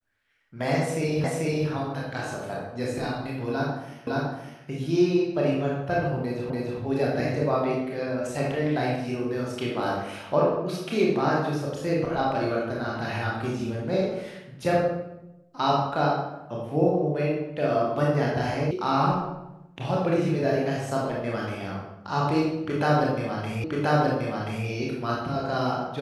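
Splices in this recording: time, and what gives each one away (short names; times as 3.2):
1.24 repeat of the last 0.44 s
4.07 repeat of the last 0.56 s
6.5 repeat of the last 0.29 s
18.71 sound cut off
23.64 repeat of the last 1.03 s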